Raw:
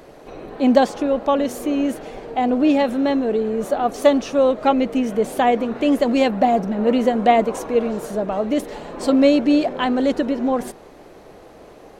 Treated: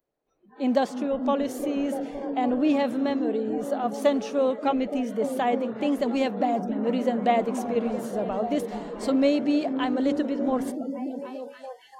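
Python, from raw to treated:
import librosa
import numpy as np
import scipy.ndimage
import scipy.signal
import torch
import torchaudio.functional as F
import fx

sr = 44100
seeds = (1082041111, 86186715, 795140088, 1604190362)

y = fx.echo_stepped(x, sr, ms=289, hz=150.0, octaves=0.7, feedback_pct=70, wet_db=-3)
y = fx.rider(y, sr, range_db=3, speed_s=2.0)
y = fx.noise_reduce_blind(y, sr, reduce_db=30)
y = y * 10.0 ** (-7.5 / 20.0)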